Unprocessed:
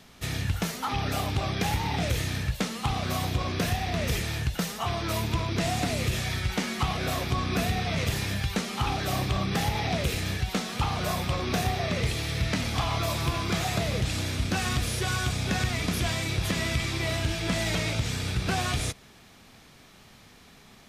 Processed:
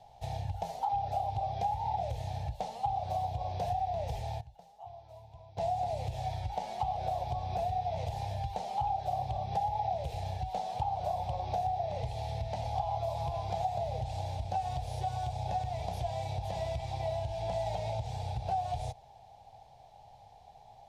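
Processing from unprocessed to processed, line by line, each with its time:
0:03.92–0:06.06: duck −20.5 dB, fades 0.49 s logarithmic
whole clip: drawn EQ curve 120 Hz 0 dB, 220 Hz −20 dB, 330 Hz −21 dB, 810 Hz +13 dB, 1,200 Hz −24 dB, 3,900 Hz −13 dB, 13,000 Hz −21 dB; downward compressor, threshold −29 dBFS; low-shelf EQ 170 Hz −4.5 dB

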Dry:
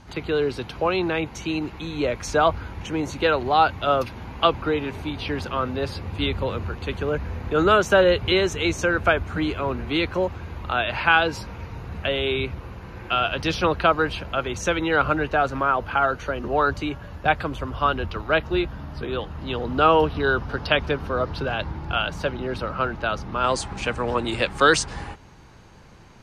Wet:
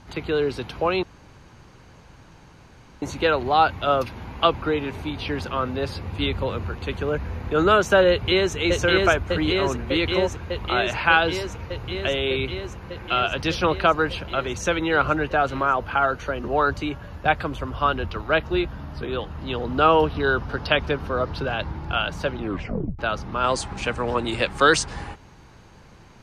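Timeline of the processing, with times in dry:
0:01.03–0:03.02: fill with room tone
0:08.10–0:08.56: delay throw 600 ms, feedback 80%, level −1.5 dB
0:22.38: tape stop 0.61 s

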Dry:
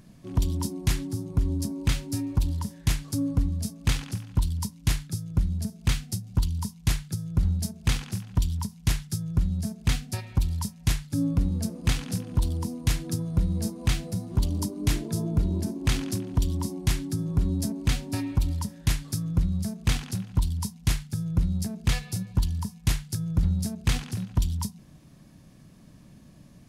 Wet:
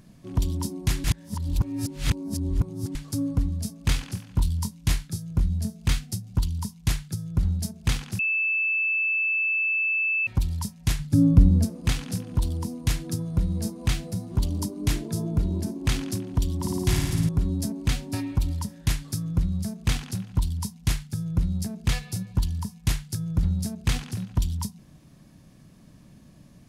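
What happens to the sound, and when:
0:01.04–0:02.95: reverse
0:03.82–0:05.99: double-tracking delay 23 ms −8 dB
0:08.19–0:10.27: beep over 2,630 Hz −21.5 dBFS
0:10.99–0:11.65: low-shelf EQ 480 Hz +9.5 dB
0:16.56–0:17.29: flutter between parallel walls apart 9.4 metres, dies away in 1.4 s

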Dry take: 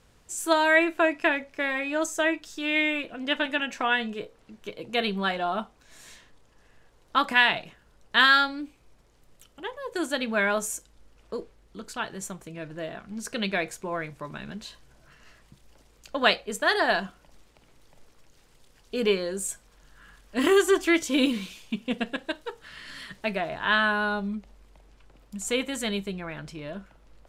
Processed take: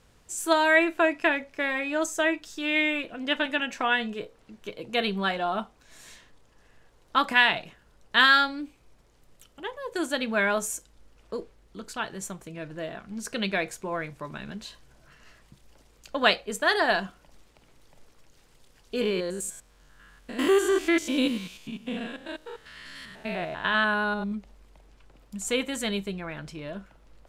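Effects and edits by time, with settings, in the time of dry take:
0:19.01–0:24.32: spectrum averaged block by block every 100 ms

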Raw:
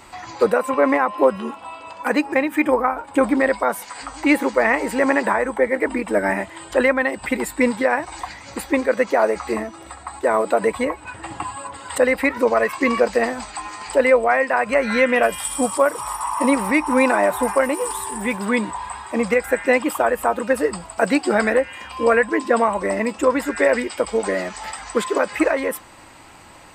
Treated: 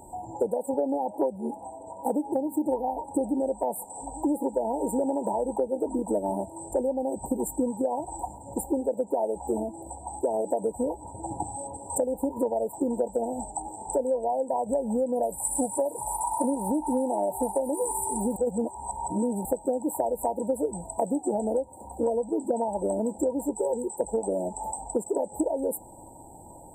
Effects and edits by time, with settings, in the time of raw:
0:18.36–0:19.45: reverse
0:23.53–0:24.01: phaser with its sweep stopped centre 420 Hz, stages 8
whole clip: brick-wall band-stop 970–7,200 Hz; downward compressor 10 to 1, threshold −23 dBFS

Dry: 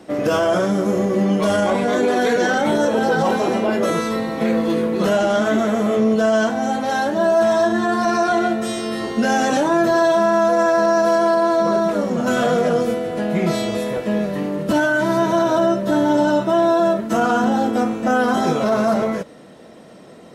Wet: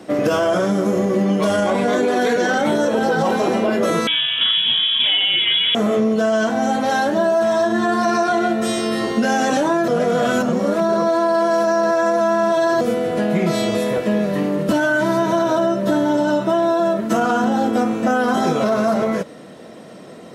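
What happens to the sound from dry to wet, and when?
0:04.07–0:05.75: voice inversion scrambler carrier 3,600 Hz
0:09.88–0:12.81: reverse
whole clip: high-pass filter 80 Hz; notch filter 860 Hz, Q 22; downward compressor, threshold −18 dBFS; level +4 dB

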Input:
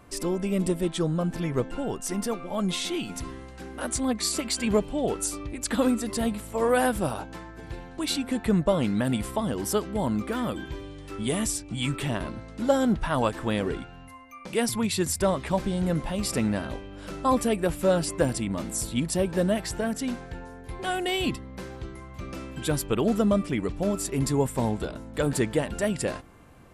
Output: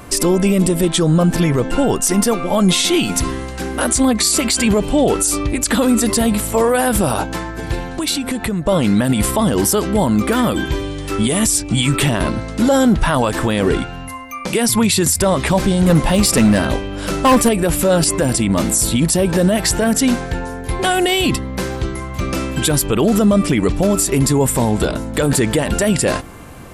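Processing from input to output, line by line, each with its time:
0:07.80–0:08.67: downward compressor, threshold −34 dBFS
0:15.84–0:17.49: hard clipping −22 dBFS
whole clip: high-shelf EQ 5,300 Hz +6.5 dB; boost into a limiter +21 dB; level −5 dB

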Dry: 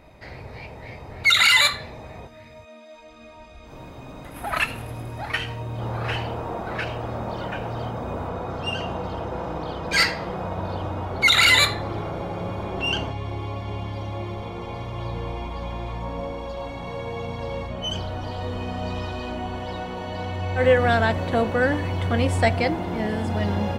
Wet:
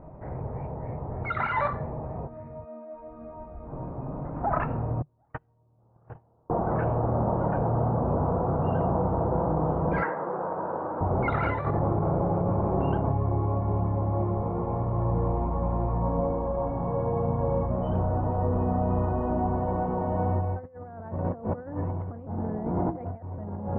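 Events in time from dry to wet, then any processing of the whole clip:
0:05.02–0:06.50: noise gate −23 dBFS, range −39 dB
0:10.02–0:11.01: loudspeaker in its box 410–3,000 Hz, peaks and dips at 690 Hz −6 dB, 1,600 Hz +7 dB, 2,500 Hz −4 dB
0:22.27–0:23.38: reverse
whole clip: low-pass filter 1,100 Hz 24 dB per octave; parametric band 150 Hz +7.5 dB 0.36 octaves; compressor whose output falls as the input rises −28 dBFS, ratio −0.5; level +2 dB

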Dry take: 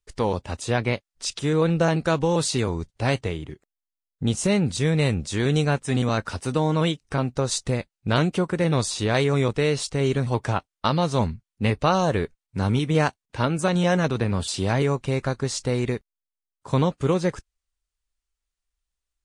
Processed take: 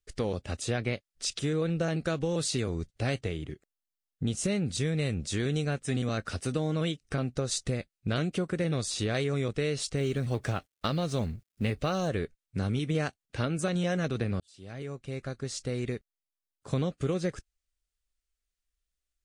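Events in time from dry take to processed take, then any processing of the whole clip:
0:09.97–0:12.08: mu-law and A-law mismatch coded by mu
0:14.40–0:16.71: fade in
whole clip: parametric band 940 Hz −14.5 dB 0.34 octaves; downward compressor 2.5 to 1, threshold −26 dBFS; level −2 dB

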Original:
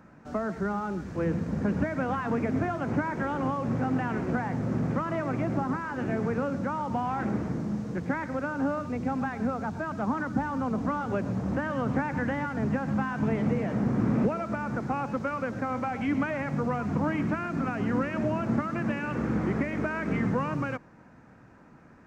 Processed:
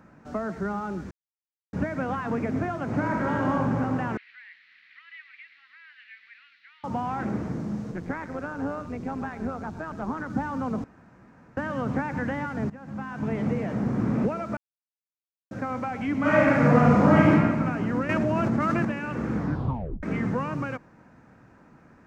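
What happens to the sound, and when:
0:01.11–0:01.73: silence
0:02.86–0:03.53: thrown reverb, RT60 2.8 s, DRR −1.5 dB
0:04.17–0:06.84: elliptic band-pass filter 1,900–4,200 Hz, stop band 60 dB
0:07.91–0:10.30: amplitude modulation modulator 170 Hz, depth 40%
0:10.84–0:11.57: fill with room tone
0:12.70–0:13.43: fade in, from −19.5 dB
0:14.57–0:15.51: silence
0:16.20–0:17.30: thrown reverb, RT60 1.7 s, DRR −10.5 dB
0:18.09–0:18.85: envelope flattener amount 100%
0:19.37: tape stop 0.66 s

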